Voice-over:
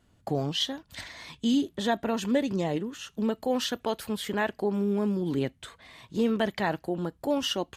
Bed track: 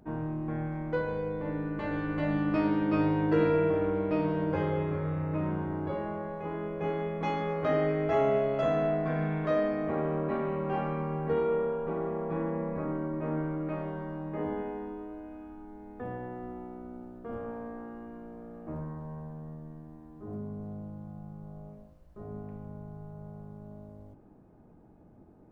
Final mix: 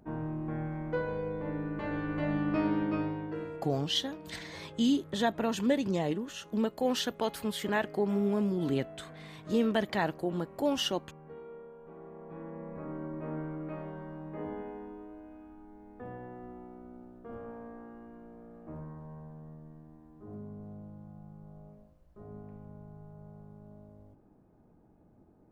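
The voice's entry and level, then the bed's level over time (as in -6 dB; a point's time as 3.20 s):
3.35 s, -2.0 dB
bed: 2.81 s -2 dB
3.66 s -19 dB
11.71 s -19 dB
13.05 s -5.5 dB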